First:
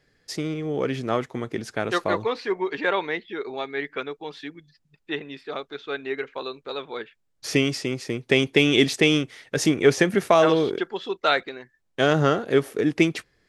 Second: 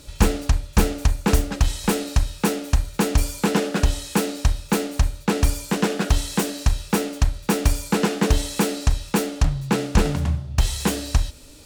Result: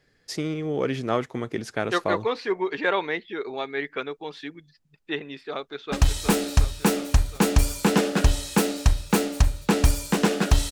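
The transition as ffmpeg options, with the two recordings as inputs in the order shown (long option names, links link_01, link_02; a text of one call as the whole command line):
ffmpeg -i cue0.wav -i cue1.wav -filter_complex "[0:a]apad=whole_dur=10.71,atrim=end=10.71,atrim=end=5.922[link_01];[1:a]atrim=start=1.508:end=6.3[link_02];[link_01][link_02]acrossfade=duration=0.004:curve1=hsin:curve2=hsin,asplit=2[link_03][link_04];[link_04]afade=type=in:start_time=5.53:duration=0.01,afade=type=out:start_time=5.92:duration=0.01,aecho=0:1:360|720|1080|1440|1800|2160|2520|2880|3240|3600|3960:0.501187|0.350831|0.245582|0.171907|0.120335|0.0842345|0.0589642|0.0412749|0.0288924|0.0202247|0.0141573[link_05];[link_03][link_05]amix=inputs=2:normalize=0" out.wav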